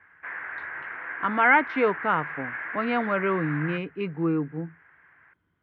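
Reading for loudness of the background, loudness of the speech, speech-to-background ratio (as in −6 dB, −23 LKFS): −34.5 LKFS, −25.5 LKFS, 9.0 dB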